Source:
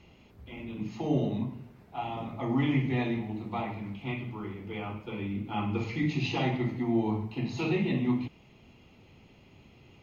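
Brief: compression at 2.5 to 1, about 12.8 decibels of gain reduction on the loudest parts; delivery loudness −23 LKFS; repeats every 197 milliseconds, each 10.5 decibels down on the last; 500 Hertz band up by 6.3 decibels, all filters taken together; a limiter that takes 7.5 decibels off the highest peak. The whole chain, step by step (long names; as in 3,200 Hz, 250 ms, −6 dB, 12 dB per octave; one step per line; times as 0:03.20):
parametric band 500 Hz +9 dB
downward compressor 2.5 to 1, threshold −40 dBFS
brickwall limiter −33 dBFS
repeating echo 197 ms, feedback 30%, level −10.5 dB
level +19 dB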